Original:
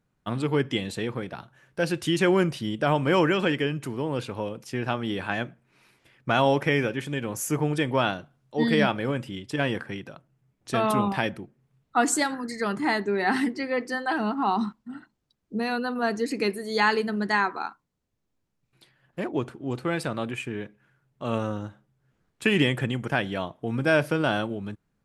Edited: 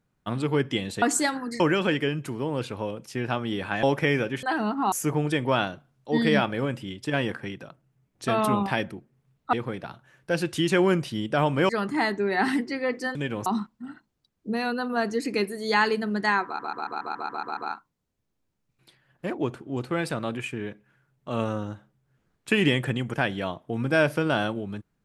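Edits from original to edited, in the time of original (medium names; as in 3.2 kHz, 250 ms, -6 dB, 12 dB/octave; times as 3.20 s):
1.02–3.18 s: swap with 11.99–12.57 s
5.41–6.47 s: delete
7.07–7.38 s: swap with 14.03–14.52 s
17.51 s: stutter 0.14 s, 9 plays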